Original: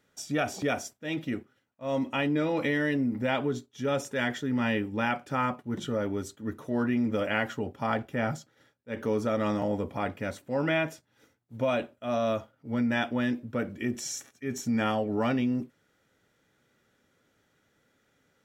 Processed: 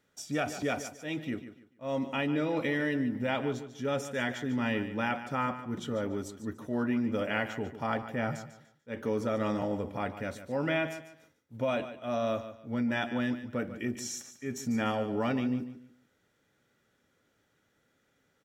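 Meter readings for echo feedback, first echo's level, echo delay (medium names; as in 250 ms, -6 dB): 27%, -12.0 dB, 146 ms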